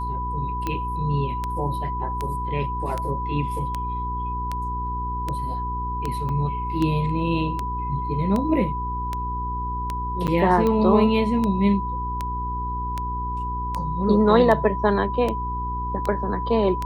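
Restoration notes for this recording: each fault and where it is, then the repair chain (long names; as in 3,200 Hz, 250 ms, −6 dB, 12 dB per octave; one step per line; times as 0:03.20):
mains hum 60 Hz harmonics 7 −30 dBFS
scratch tick 78 rpm −13 dBFS
whistle 990 Hz −27 dBFS
0:06.29: drop-out 3.1 ms
0:10.27–0:10.28: drop-out 8.5 ms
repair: click removal
hum removal 60 Hz, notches 7
notch filter 990 Hz, Q 30
repair the gap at 0:06.29, 3.1 ms
repair the gap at 0:10.27, 8.5 ms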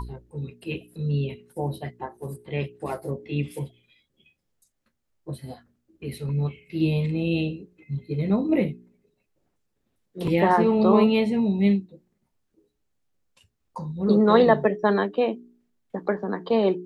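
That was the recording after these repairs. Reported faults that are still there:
none of them is left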